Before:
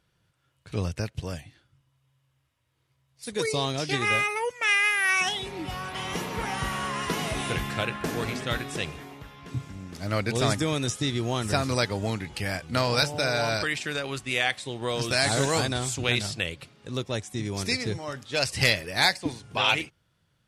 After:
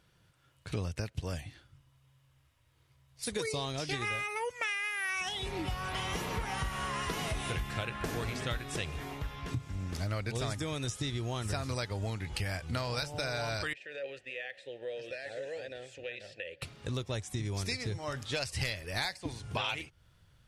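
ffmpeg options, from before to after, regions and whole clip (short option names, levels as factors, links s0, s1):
-filter_complex "[0:a]asettb=1/sr,asplit=3[s0][s1][s2];[s0]atrim=end=13.734[s3];[s1]atrim=start=13.73:end=16.62,asetpts=PTS-STARTPTS,afade=t=in:d=0.004:c=qsin,afade=t=out:st=2.886:d=0.004:c=qsin,acompressor=threshold=0.0398:ratio=6:attack=3.2:release=140:knee=1:detection=peak,asplit=3[s4][s5][s6];[s4]bandpass=f=530:t=q:w=8,volume=1[s7];[s5]bandpass=f=1840:t=q:w=8,volume=0.501[s8];[s6]bandpass=f=2480:t=q:w=8,volume=0.355[s9];[s7][s8][s9]amix=inputs=3:normalize=0[s10];[s2]atrim=start=16.616[s11];[s3][s10]acrossfade=d=0.004:c1=hsin:c2=qsin[s12];[s12][s11]acrossfade=d=0.004:c1=qsin:c2=hsin,asubboost=boost=4:cutoff=90,acompressor=threshold=0.0158:ratio=6,volume=1.5"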